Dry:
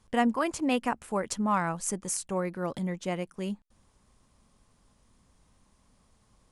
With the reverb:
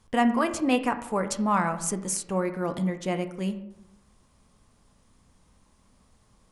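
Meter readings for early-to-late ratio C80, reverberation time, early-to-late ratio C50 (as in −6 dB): 14.5 dB, 0.85 s, 11.5 dB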